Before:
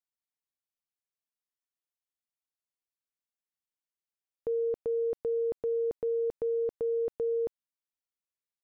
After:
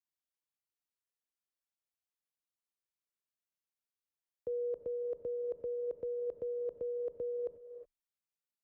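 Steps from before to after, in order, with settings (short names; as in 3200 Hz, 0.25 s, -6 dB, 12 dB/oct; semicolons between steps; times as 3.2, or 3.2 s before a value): frequency shift +21 Hz; level quantiser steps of 16 dB; non-linear reverb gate 0.39 s rising, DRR 9.5 dB; gain -3.5 dB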